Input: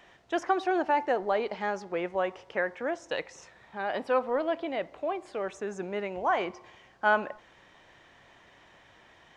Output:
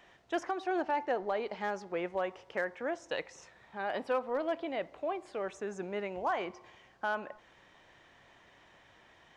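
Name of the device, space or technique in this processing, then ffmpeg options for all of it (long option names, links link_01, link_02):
limiter into clipper: -filter_complex "[0:a]alimiter=limit=-18.5dB:level=0:latency=1:release=337,asoftclip=type=hard:threshold=-20dB,asettb=1/sr,asplit=3[link_01][link_02][link_03];[link_01]atrim=end=0.814[link_04];[link_02]atrim=start=0.81:end=1.37,asetpts=PTS-STARTPTS,afade=type=in:duration=0.004:curve=qsin,afade=type=out:start_time=0.556:duration=0.004:curve=qsin,lowpass=7500[link_05];[link_03]atrim=start=1.366[link_06];[link_04][link_05]acrossfade=duration=0.004:curve1=hsin:curve2=qsin[link_07];[link_07][link_06]acrossfade=duration=0.004:curve1=qsin:curve2=hsin,volume=-3.5dB"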